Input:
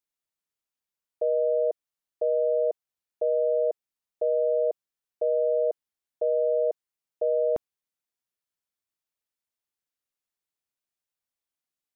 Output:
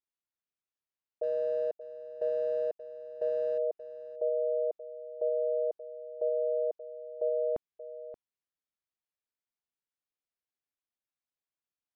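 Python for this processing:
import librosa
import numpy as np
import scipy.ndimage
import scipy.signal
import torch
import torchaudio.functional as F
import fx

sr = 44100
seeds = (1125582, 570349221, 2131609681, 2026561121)

y = fx.law_mismatch(x, sr, coded='A', at=(1.23, 3.58))
y = fx.air_absorb(y, sr, metres=140.0)
y = y + 10.0 ** (-13.5 / 20.0) * np.pad(y, (int(579 * sr / 1000.0), 0))[:len(y)]
y = y * librosa.db_to_amplitude(-5.5)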